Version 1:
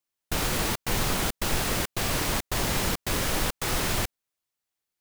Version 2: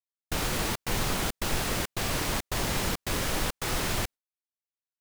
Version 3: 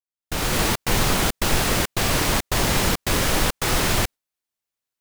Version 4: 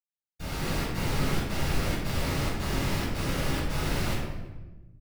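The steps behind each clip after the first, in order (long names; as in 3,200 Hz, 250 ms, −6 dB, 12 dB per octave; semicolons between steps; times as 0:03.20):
noise gate with hold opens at −25 dBFS; high-shelf EQ 11,000 Hz −3 dB; level −2 dB
fade in at the beginning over 0.60 s; level +8.5 dB
repeating echo 109 ms, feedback 50%, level −22.5 dB; convolution reverb RT60 1.1 s, pre-delay 77 ms; level −2 dB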